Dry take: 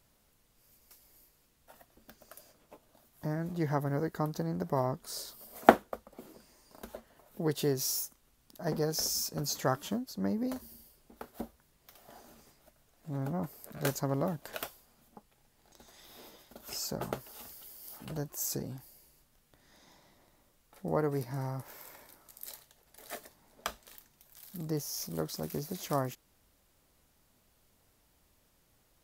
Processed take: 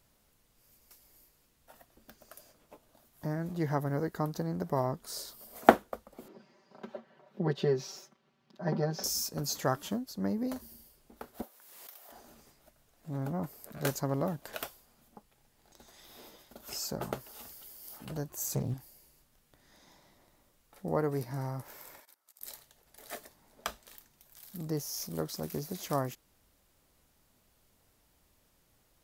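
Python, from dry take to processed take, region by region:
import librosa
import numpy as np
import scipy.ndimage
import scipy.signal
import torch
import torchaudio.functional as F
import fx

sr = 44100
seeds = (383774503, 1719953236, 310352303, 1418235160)

y = fx.chain(x, sr, fx.highpass(hz=120.0, slope=24),
    fx.air_absorb(metres=220.0),
    fx.comb(ms=5.2, depth=0.92), at=(6.28, 9.04))
y = fx.chain(y, sr, fx.highpass(hz=520.0, slope=12),
    fx.high_shelf(hz=11000.0, db=11.5),
    fx.pre_swell(db_per_s=36.0), at=(11.42, 12.12))
y = fx.chain(y, sr, fx.peak_eq(hz=110.0, db=12.0, octaves=1.1),
    fx.notch(hz=5300.0, q=9.7),
    fx.doppler_dist(depth_ms=0.5), at=(18.29, 18.74))
y = fx.chain(y, sr, fx.highpass(hz=1100.0, slope=6),
    fx.level_steps(step_db=20), at=(22.0, 22.41))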